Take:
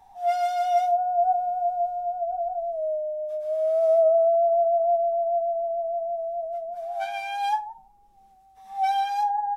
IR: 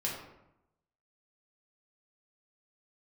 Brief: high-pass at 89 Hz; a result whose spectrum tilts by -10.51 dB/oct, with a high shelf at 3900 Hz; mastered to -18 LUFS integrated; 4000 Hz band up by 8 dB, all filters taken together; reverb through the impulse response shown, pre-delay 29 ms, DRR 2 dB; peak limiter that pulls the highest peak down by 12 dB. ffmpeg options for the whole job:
-filter_complex "[0:a]highpass=89,highshelf=f=3.9k:g=8.5,equalizer=f=4k:t=o:g=5.5,alimiter=level_in=1dB:limit=-24dB:level=0:latency=1,volume=-1dB,asplit=2[a][b];[1:a]atrim=start_sample=2205,adelay=29[c];[b][c]afir=irnorm=-1:irlink=0,volume=-6dB[d];[a][d]amix=inputs=2:normalize=0,volume=9dB"

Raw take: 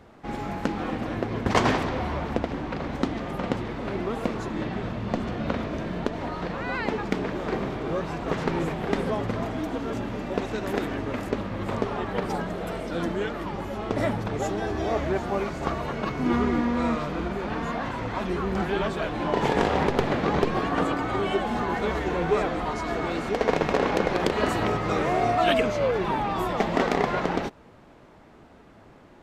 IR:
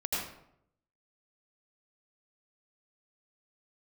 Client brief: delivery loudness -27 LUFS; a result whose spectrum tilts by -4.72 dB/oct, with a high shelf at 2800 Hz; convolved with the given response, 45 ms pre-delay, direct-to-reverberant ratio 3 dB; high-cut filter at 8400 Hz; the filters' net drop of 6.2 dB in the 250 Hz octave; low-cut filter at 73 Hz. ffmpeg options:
-filter_complex "[0:a]highpass=73,lowpass=8.4k,equalizer=f=250:t=o:g=-8.5,highshelf=f=2.8k:g=7,asplit=2[a][b];[1:a]atrim=start_sample=2205,adelay=45[c];[b][c]afir=irnorm=-1:irlink=0,volume=-9dB[d];[a][d]amix=inputs=2:normalize=0,volume=-0.5dB"

